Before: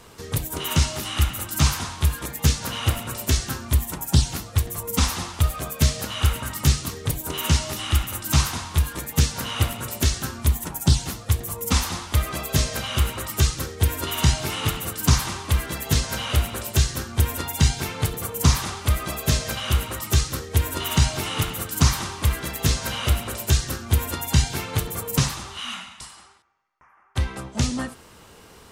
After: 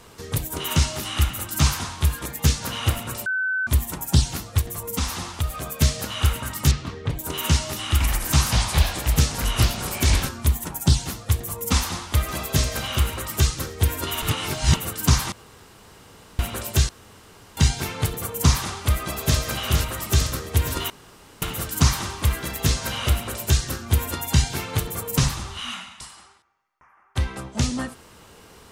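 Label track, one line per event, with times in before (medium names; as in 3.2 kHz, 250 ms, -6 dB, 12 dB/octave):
3.260000	3.670000	bleep 1.52 kHz -21 dBFS
4.610000	5.690000	compression 1.5:1, threshold -28 dBFS
6.710000	7.190000	low-pass 3.1 kHz
7.920000	10.290000	ever faster or slower copies 83 ms, each echo -4 st, echoes 2
11.790000	12.510000	echo throw 490 ms, feedback 55%, level -11 dB
14.220000	14.760000	reverse
15.320000	16.390000	room tone
16.890000	17.570000	room tone
18.700000	19.380000	echo throw 460 ms, feedback 70%, level -5.5 dB
20.900000	21.420000	room tone
25.220000	25.710000	bass shelf 120 Hz +11 dB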